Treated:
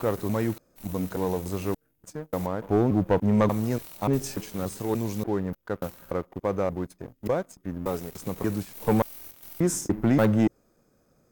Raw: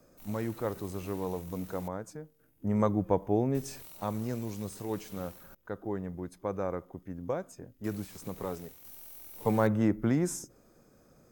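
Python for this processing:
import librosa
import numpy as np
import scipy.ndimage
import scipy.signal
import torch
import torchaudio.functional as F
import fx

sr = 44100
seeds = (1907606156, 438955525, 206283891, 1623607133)

y = fx.block_reorder(x, sr, ms=291.0, group=3)
y = fx.leveller(y, sr, passes=2)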